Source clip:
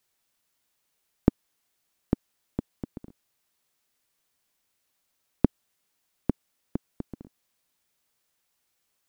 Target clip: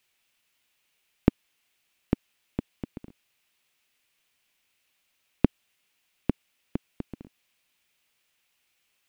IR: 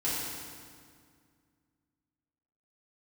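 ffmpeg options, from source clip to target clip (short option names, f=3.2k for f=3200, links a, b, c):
-af "equalizer=f=2.6k:w=1.4:g=11"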